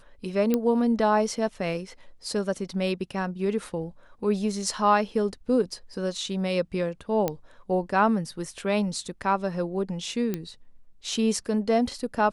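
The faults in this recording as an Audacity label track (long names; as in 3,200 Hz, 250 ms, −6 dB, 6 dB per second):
0.540000	0.540000	click −11 dBFS
7.280000	7.280000	click −12 dBFS
10.340000	10.340000	click −15 dBFS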